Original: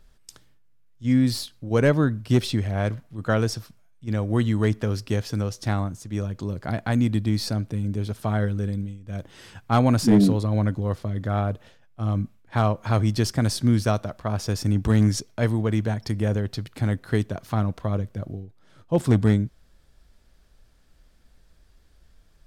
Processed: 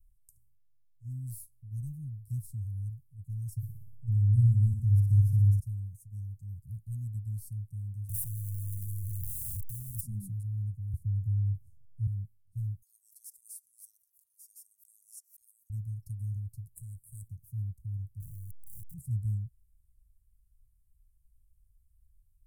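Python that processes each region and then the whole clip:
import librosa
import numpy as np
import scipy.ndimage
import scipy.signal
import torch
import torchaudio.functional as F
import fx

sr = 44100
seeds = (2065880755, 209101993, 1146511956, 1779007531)

y = fx.chain(x, sr, fx.low_shelf(hz=450.0, db=12.0),
    fx.room_flutter(wall_m=10.2, rt60_s=0.76), at=(3.56, 5.6))
y = fx.chain(y, sr, fx.clip_1bit(),
    fx.band_squash(depth_pct=40), at=(8.09, 10.01))
y = fx.chain(y, sr, fx.low_shelf(hz=370.0, db=8.0),
    fx.band_squash(depth_pct=40), at=(10.93, 12.07))
y = fx.chain(y, sr, fx.highpass(hz=1100.0, slope=24),
    fx.pre_swell(db_per_s=140.0), at=(12.82, 15.7))
y = fx.chain(y, sr, fx.tube_stage(drive_db=29.0, bias=0.6),
    fx.high_shelf_res(hz=6200.0, db=10.5, q=3.0), at=(16.75, 17.28))
y = fx.chain(y, sr, fx.clip_1bit(),
    fx.peak_eq(hz=260.0, db=11.5, octaves=0.42),
    fx.leveller(passes=1), at=(18.2, 18.94))
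y = scipy.signal.sosfilt(scipy.signal.cheby2(4, 70, [450.0, 2900.0], 'bandstop', fs=sr, output='sos'), y)
y = fx.high_shelf(y, sr, hz=10000.0, db=4.5)
y = y * librosa.db_to_amplitude(-8.0)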